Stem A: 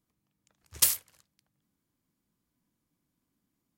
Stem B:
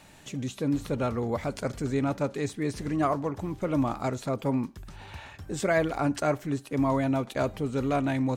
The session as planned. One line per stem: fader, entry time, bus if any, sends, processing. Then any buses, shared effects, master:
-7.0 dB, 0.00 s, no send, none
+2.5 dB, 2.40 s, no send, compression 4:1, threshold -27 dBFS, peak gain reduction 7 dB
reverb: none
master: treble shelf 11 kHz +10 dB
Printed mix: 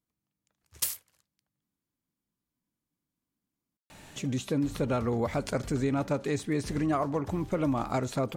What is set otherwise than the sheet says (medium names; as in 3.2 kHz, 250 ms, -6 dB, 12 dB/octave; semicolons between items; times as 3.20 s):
stem B: entry 2.40 s -> 3.90 s; master: missing treble shelf 11 kHz +10 dB